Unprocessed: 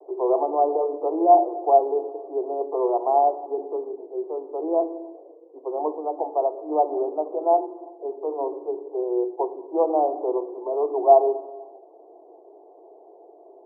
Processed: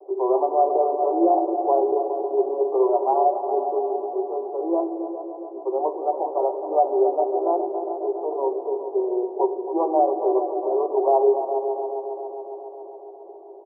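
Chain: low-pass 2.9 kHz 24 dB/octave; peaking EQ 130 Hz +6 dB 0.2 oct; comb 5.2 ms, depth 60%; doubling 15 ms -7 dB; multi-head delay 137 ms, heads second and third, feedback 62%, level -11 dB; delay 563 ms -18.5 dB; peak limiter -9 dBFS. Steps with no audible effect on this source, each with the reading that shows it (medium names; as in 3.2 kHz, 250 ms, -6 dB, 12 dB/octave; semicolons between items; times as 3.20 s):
low-pass 2.9 kHz: input has nothing above 1.1 kHz; peaking EQ 130 Hz: input has nothing below 250 Hz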